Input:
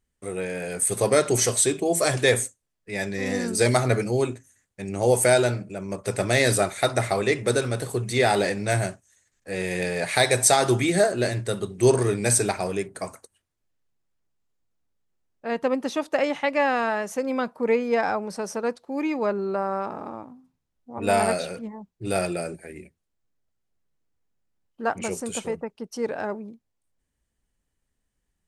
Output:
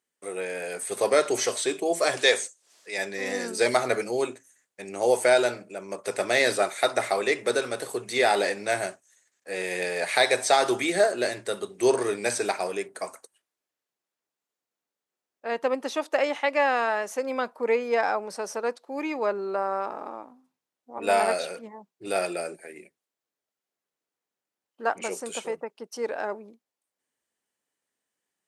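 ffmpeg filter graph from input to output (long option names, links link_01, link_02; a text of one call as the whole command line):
ffmpeg -i in.wav -filter_complex "[0:a]asettb=1/sr,asplit=3[link_01][link_02][link_03];[link_01]atrim=end=2.214[link_04];[link_02]atrim=start=2.21:end=2.98,asetpts=PTS-STARTPTS,afade=type=in:duration=0.004:curve=qsin,afade=type=out:start_time=0.766:duration=0.004:curve=qsin,lowpass=6000,bass=frequency=250:gain=-11,treble=frequency=4000:gain=13,acompressor=mode=upward:threshold=-35dB:ratio=2.5:attack=3.2:release=140:knee=2.83:detection=peak[link_05];[link_03]atrim=start=2.976[link_06];[link_04][link_05]acrossfade=duration=0.004:curve1=hsin:curve2=qsin[link_07];[link_07][link_06]acrossfade=duration=0.004:curve1=qsin:curve2=hsin,highpass=390,acrossover=split=5400[link_08][link_09];[link_09]acompressor=threshold=-36dB:ratio=4:attack=1:release=60[link_10];[link_08][link_10]amix=inputs=2:normalize=0" out.wav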